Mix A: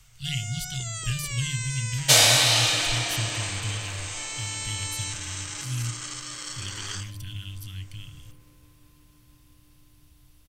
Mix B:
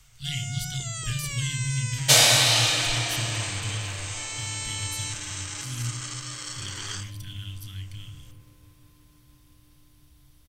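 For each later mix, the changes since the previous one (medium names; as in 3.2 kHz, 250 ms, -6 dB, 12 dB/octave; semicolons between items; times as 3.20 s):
speech: send +9.0 dB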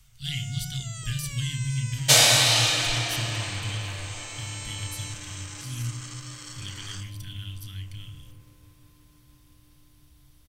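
first sound -6.0 dB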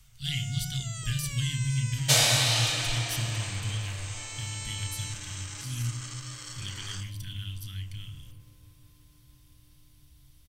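second sound -5.5 dB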